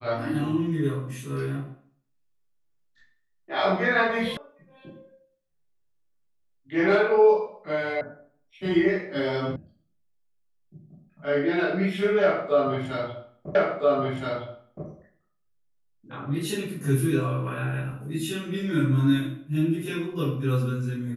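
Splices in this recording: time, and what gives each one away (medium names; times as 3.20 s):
4.37 s: sound stops dead
8.01 s: sound stops dead
9.56 s: sound stops dead
13.55 s: repeat of the last 1.32 s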